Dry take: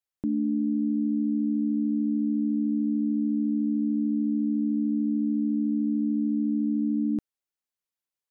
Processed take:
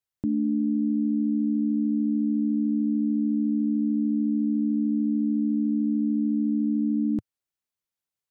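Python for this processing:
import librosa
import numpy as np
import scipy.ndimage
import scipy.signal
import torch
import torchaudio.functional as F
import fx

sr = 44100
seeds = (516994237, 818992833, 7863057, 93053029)

y = fx.peak_eq(x, sr, hz=110.0, db=7.0, octaves=1.2)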